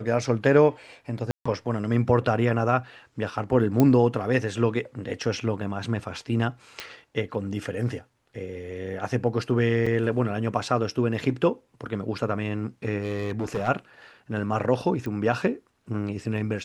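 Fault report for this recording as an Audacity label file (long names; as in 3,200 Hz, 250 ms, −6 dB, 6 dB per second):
1.310000	1.460000	drop-out 145 ms
3.800000	3.800000	click −8 dBFS
6.800000	6.800000	click −16 dBFS
9.860000	9.870000	drop-out 5.4 ms
13.000000	13.690000	clipping −23 dBFS
15.060000	15.060000	click −22 dBFS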